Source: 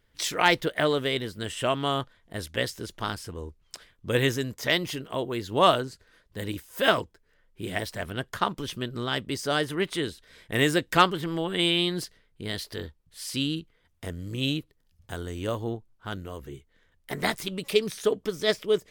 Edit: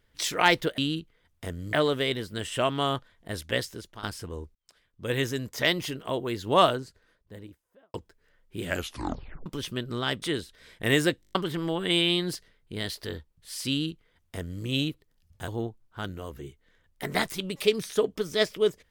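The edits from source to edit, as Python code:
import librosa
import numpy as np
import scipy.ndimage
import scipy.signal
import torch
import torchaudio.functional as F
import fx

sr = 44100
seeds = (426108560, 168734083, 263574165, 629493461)

y = fx.studio_fade_out(x, sr, start_s=5.53, length_s=1.46)
y = fx.edit(y, sr, fx.fade_out_to(start_s=2.64, length_s=0.44, floor_db=-14.5),
    fx.fade_in_span(start_s=3.6, length_s=0.98),
    fx.tape_stop(start_s=7.68, length_s=0.83),
    fx.cut(start_s=9.27, length_s=0.64),
    fx.stutter_over(start_s=10.9, slice_s=0.02, count=7),
    fx.duplicate(start_s=13.38, length_s=0.95, to_s=0.78),
    fx.cut(start_s=15.17, length_s=0.39), tone=tone)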